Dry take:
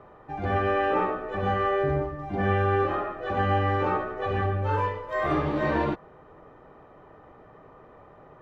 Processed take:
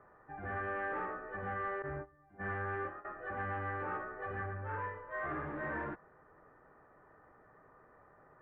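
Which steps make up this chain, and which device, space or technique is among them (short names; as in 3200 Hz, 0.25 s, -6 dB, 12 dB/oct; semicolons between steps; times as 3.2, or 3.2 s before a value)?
1.82–3.05 gate -25 dBFS, range -18 dB; overdriven synthesiser ladder filter (soft clip -22 dBFS, distortion -14 dB; ladder low-pass 1900 Hz, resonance 60%); gain -3 dB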